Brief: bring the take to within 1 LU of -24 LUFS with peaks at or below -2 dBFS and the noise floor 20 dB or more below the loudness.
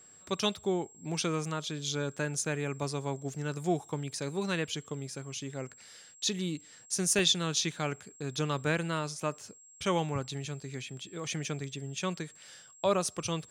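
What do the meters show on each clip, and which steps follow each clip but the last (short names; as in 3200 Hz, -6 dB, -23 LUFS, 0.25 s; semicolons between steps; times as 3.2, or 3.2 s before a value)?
dropouts 1; longest dropout 1.3 ms; steady tone 7600 Hz; tone level -54 dBFS; loudness -33.0 LUFS; peak -13.5 dBFS; loudness target -24.0 LUFS
-> interpolate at 7.19, 1.3 ms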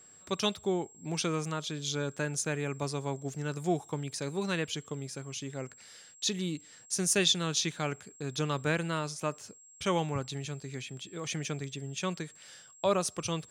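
dropouts 0; steady tone 7600 Hz; tone level -54 dBFS
-> notch 7600 Hz, Q 30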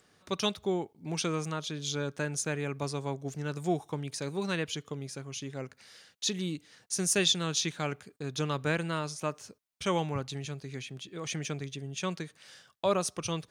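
steady tone none; loudness -33.0 LUFS; peak -14.0 dBFS; loudness target -24.0 LUFS
-> gain +9 dB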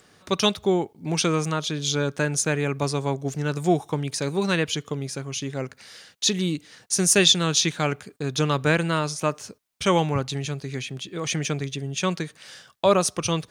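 loudness -24.0 LUFS; peak -5.0 dBFS; noise floor -59 dBFS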